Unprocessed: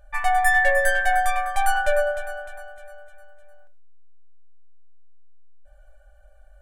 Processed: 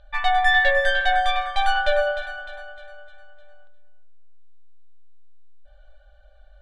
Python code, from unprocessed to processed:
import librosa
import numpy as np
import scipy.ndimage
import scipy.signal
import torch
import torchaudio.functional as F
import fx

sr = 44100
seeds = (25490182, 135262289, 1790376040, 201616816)

p1 = fx.lowpass_res(x, sr, hz=3700.0, q=6.2)
p2 = fx.peak_eq(p1, sr, hz=2400.0, db=-2.5, octaves=0.77)
y = p2 + fx.echo_feedback(p2, sr, ms=356, feedback_pct=15, wet_db=-16.0, dry=0)